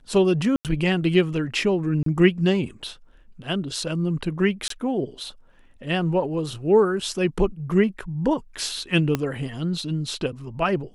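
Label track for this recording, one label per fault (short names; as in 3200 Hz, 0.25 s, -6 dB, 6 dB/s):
0.560000	0.650000	gap 88 ms
2.030000	2.060000	gap 33 ms
4.680000	4.700000	gap 23 ms
9.150000	9.150000	pop -9 dBFS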